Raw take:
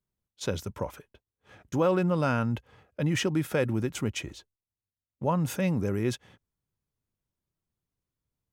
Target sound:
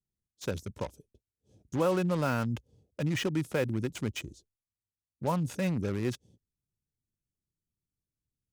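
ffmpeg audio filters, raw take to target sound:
ffmpeg -i in.wav -filter_complex "[0:a]lowpass=10000,acrossover=split=470|5000[link_01][link_02][link_03];[link_02]acrusher=bits=5:mix=0:aa=0.5[link_04];[link_03]asoftclip=type=tanh:threshold=-40dB[link_05];[link_01][link_04][link_05]amix=inputs=3:normalize=0,volume=-3dB" out.wav

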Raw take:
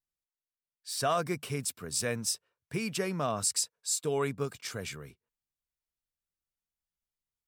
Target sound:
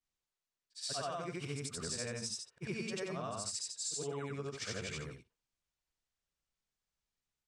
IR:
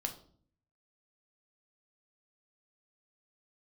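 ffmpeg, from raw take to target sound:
-af "afftfilt=real='re':imag='-im':win_size=8192:overlap=0.75,lowpass=frequency=8000:width=0.5412,lowpass=frequency=8000:width=1.3066,acompressor=threshold=-45dB:ratio=12,volume=8.5dB"

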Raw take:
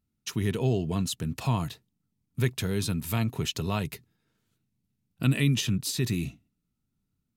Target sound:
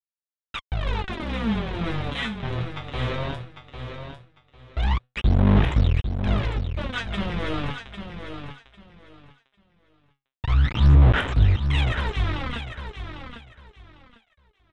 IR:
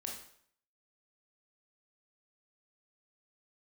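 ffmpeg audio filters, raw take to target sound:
-af "aresample=16000,acrusher=bits=4:mix=0:aa=0.000001,aresample=44100,asoftclip=type=tanh:threshold=-21.5dB,aphaser=in_gain=1:out_gain=1:delay=4:decay=0.79:speed=0.36:type=sinusoidal,aecho=1:1:400|800|1200:0.376|0.0827|0.0182,asetrate=22050,aresample=44100"

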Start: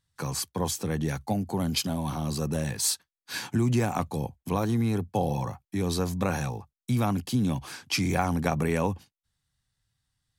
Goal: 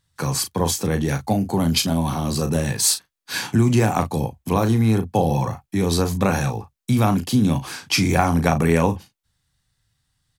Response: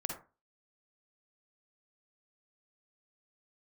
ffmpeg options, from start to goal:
-filter_complex "[0:a]asplit=2[link_01][link_02];[link_02]adelay=36,volume=-9dB[link_03];[link_01][link_03]amix=inputs=2:normalize=0,volume=7.5dB"

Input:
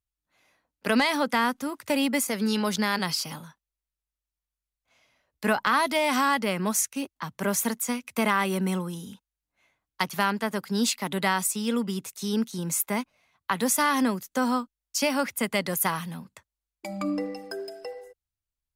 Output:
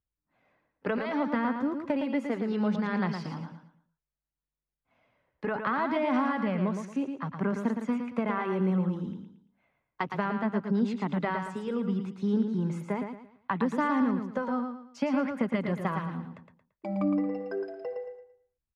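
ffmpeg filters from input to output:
ffmpeg -i in.wav -filter_complex "[0:a]lowpass=1800,equalizer=frequency=230:width_type=o:width=2.3:gain=6,acompressor=threshold=-22dB:ratio=6,flanger=delay=0:depth=2.6:regen=-54:speed=0.65:shape=triangular,asplit=2[link_01][link_02];[link_02]aecho=0:1:113|226|339|452:0.473|0.151|0.0485|0.0155[link_03];[link_01][link_03]amix=inputs=2:normalize=0,volume=1.5dB" out.wav

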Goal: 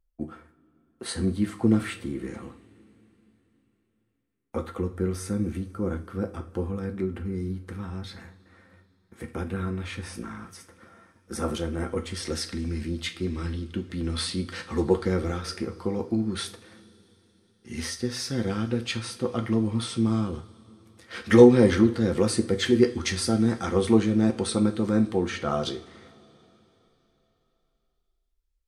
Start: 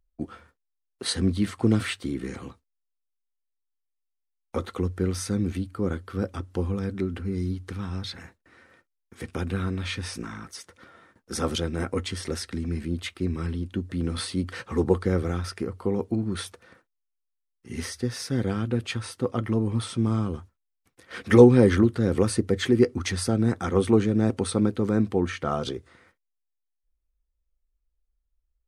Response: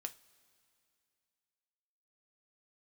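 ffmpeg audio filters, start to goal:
-filter_complex "[0:a]asetnsamples=nb_out_samples=441:pad=0,asendcmd='12.14 equalizer g 5',equalizer=frequency=4400:width_type=o:width=1.7:gain=-7[link_01];[1:a]atrim=start_sample=2205,asetrate=31311,aresample=44100[link_02];[link_01][link_02]afir=irnorm=-1:irlink=0"

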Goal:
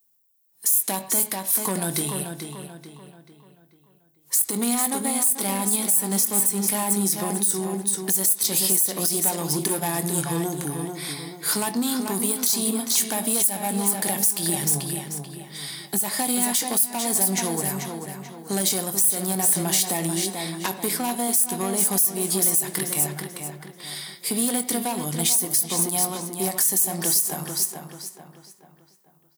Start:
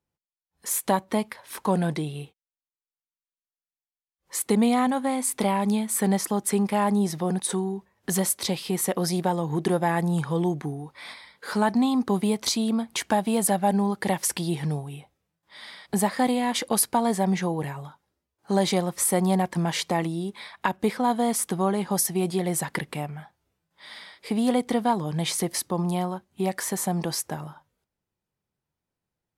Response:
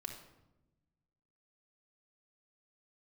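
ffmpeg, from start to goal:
-filter_complex "[0:a]aeval=exprs='(tanh(10*val(0)+0.4)-tanh(0.4))/10':channel_layout=same,highpass=140,aemphasis=mode=production:type=bsi,asplit=2[link_01][link_02];[link_02]adelay=21,volume=-12.5dB[link_03];[link_01][link_03]amix=inputs=2:normalize=0,asplit=2[link_04][link_05];[link_05]adelay=437,lowpass=frequency=4700:poles=1,volume=-7dB,asplit=2[link_06][link_07];[link_07]adelay=437,lowpass=frequency=4700:poles=1,volume=0.43,asplit=2[link_08][link_09];[link_09]adelay=437,lowpass=frequency=4700:poles=1,volume=0.43,asplit=2[link_10][link_11];[link_11]adelay=437,lowpass=frequency=4700:poles=1,volume=0.43,asplit=2[link_12][link_13];[link_13]adelay=437,lowpass=frequency=4700:poles=1,volume=0.43[link_14];[link_04][link_06][link_08][link_10][link_12][link_14]amix=inputs=6:normalize=0,asplit=2[link_15][link_16];[1:a]atrim=start_sample=2205,atrim=end_sample=6174,lowpass=3900[link_17];[link_16][link_17]afir=irnorm=-1:irlink=0,volume=-1.5dB[link_18];[link_15][link_18]amix=inputs=2:normalize=0,acompressor=threshold=-22dB:ratio=6,bass=frequency=250:gain=10,treble=frequency=4000:gain=15,alimiter=level_in=6dB:limit=-1dB:release=50:level=0:latency=1,volume=-8dB"

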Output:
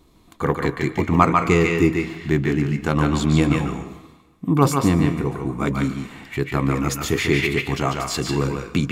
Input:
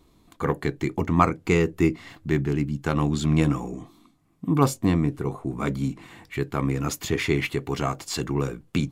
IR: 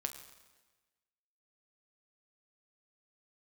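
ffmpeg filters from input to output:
-filter_complex "[0:a]asplit=2[link_01][link_02];[link_02]equalizer=frequency=2200:width=0.61:gain=7.5[link_03];[1:a]atrim=start_sample=2205,adelay=145[link_04];[link_03][link_04]afir=irnorm=-1:irlink=0,volume=-6.5dB[link_05];[link_01][link_05]amix=inputs=2:normalize=0,volume=3.5dB"

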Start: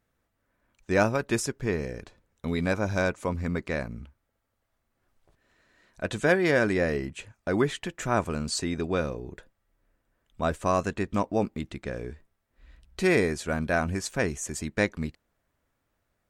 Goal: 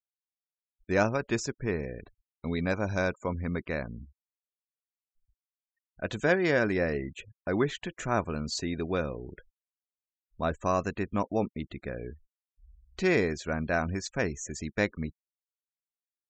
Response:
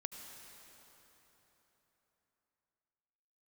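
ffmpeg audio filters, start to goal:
-af "afftfilt=real='re*gte(hypot(re,im),0.00708)':imag='im*gte(hypot(re,im),0.00708)':win_size=1024:overlap=0.75,aresample=16000,aresample=44100,volume=-2.5dB"

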